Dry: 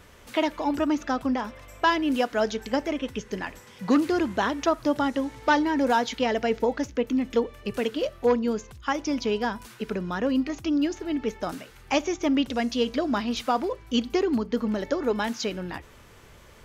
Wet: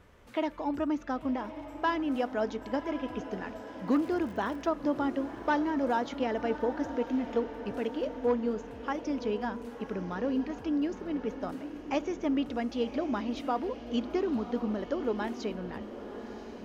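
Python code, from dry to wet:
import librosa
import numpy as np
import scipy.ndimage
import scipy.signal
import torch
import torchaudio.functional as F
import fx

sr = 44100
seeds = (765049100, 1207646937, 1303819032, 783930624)

p1 = fx.high_shelf(x, sr, hz=2700.0, db=-11.5)
p2 = fx.dmg_crackle(p1, sr, seeds[0], per_s=100.0, level_db=-37.0, at=(3.87, 4.65), fade=0.02)
p3 = p2 + fx.echo_diffused(p2, sr, ms=1062, feedback_pct=54, wet_db=-11, dry=0)
y = p3 * librosa.db_to_amplitude(-5.5)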